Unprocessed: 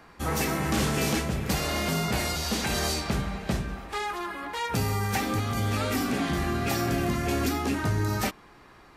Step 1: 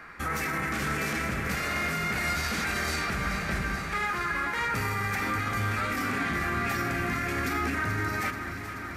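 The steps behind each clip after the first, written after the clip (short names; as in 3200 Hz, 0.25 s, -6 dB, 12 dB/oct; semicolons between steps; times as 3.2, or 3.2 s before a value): band shelf 1700 Hz +11 dB 1.2 oct; limiter -22 dBFS, peak gain reduction 11.5 dB; echo with dull and thin repeats by turns 0.216 s, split 2300 Hz, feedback 88%, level -9 dB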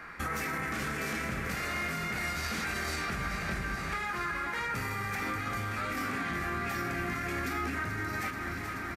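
compressor, threshold -31 dBFS, peak gain reduction 6.5 dB; doubler 23 ms -10.5 dB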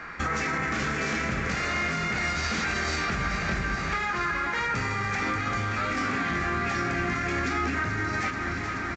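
gain +6 dB; A-law 128 kbps 16000 Hz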